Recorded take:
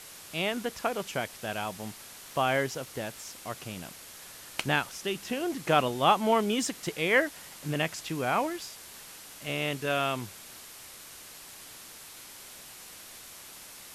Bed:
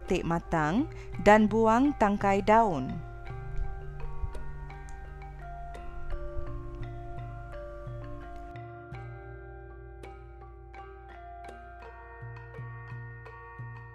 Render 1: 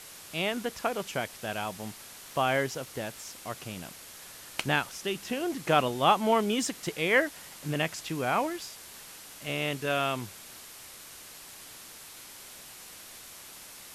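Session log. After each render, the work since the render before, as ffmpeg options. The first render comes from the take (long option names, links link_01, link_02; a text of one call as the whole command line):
ffmpeg -i in.wav -af anull out.wav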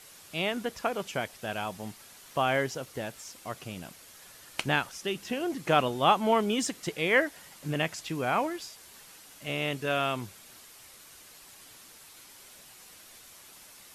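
ffmpeg -i in.wav -af "afftdn=noise_reduction=6:noise_floor=-48" out.wav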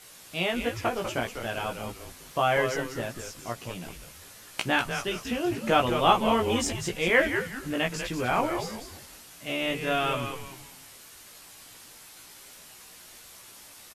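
ffmpeg -i in.wav -filter_complex "[0:a]asplit=2[link_01][link_02];[link_02]adelay=17,volume=-2.5dB[link_03];[link_01][link_03]amix=inputs=2:normalize=0,asplit=5[link_04][link_05][link_06][link_07][link_08];[link_05]adelay=195,afreqshift=-130,volume=-7.5dB[link_09];[link_06]adelay=390,afreqshift=-260,volume=-17.1dB[link_10];[link_07]adelay=585,afreqshift=-390,volume=-26.8dB[link_11];[link_08]adelay=780,afreqshift=-520,volume=-36.4dB[link_12];[link_04][link_09][link_10][link_11][link_12]amix=inputs=5:normalize=0" out.wav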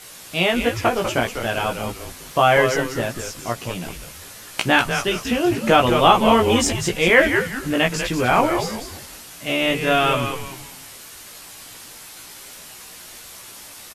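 ffmpeg -i in.wav -af "volume=9dB,alimiter=limit=-2dB:level=0:latency=1" out.wav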